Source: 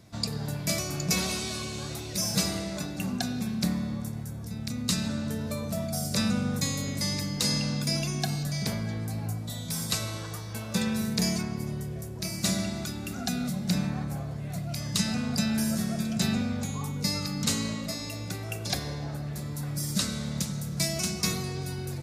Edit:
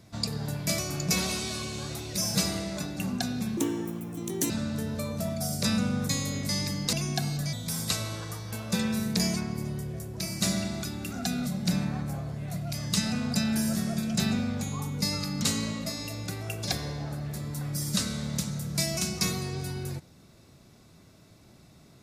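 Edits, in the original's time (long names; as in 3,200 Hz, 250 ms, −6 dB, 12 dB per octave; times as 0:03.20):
0:03.57–0:05.02: play speed 156%
0:07.45–0:07.99: remove
0:08.59–0:09.55: remove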